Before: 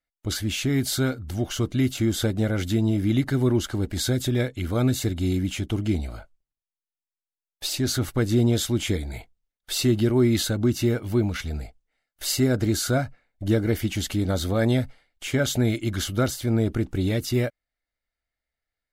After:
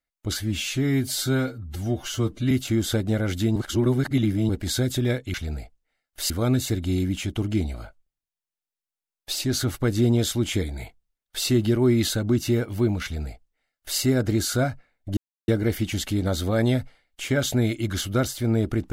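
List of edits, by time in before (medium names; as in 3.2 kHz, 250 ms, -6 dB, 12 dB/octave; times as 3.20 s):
0.41–1.81 s: stretch 1.5×
2.86–3.79 s: reverse
11.37–12.33 s: copy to 4.64 s
13.51 s: insert silence 0.31 s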